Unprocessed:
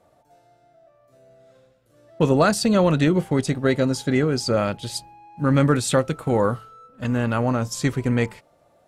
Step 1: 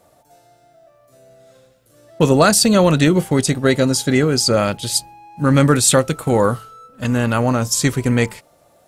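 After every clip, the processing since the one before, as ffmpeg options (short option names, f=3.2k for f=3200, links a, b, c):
-af "highshelf=f=4.9k:g=12,volume=4.5dB"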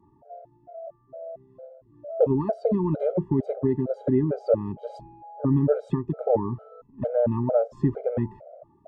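-af "lowpass=f=620:t=q:w=4.9,acompressor=threshold=-22dB:ratio=2,afftfilt=real='re*gt(sin(2*PI*2.2*pts/sr)*(1-2*mod(floor(b*sr/1024/410),2)),0)':imag='im*gt(sin(2*PI*2.2*pts/sr)*(1-2*mod(floor(b*sr/1024/410),2)),0)':win_size=1024:overlap=0.75"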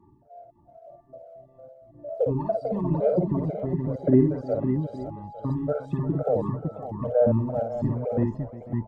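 -filter_complex "[0:a]aphaser=in_gain=1:out_gain=1:delay=1.5:decay=0.58:speed=0.97:type=sinusoidal,asplit=2[a][b];[b]aecho=0:1:54|353|490|554|555|856:0.596|0.141|0.106|0.473|0.376|0.15[c];[a][c]amix=inputs=2:normalize=0,volume=-5.5dB"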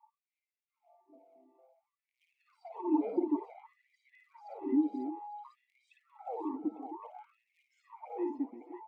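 -filter_complex "[0:a]asplit=3[a][b][c];[a]bandpass=f=300:t=q:w=8,volume=0dB[d];[b]bandpass=f=870:t=q:w=8,volume=-6dB[e];[c]bandpass=f=2.24k:t=q:w=8,volume=-9dB[f];[d][e][f]amix=inputs=3:normalize=0,aemphasis=mode=production:type=75fm,afftfilt=real='re*gte(b*sr/1024,210*pow(1800/210,0.5+0.5*sin(2*PI*0.56*pts/sr)))':imag='im*gte(b*sr/1024,210*pow(1800/210,0.5+0.5*sin(2*PI*0.56*pts/sr)))':win_size=1024:overlap=0.75,volume=8dB"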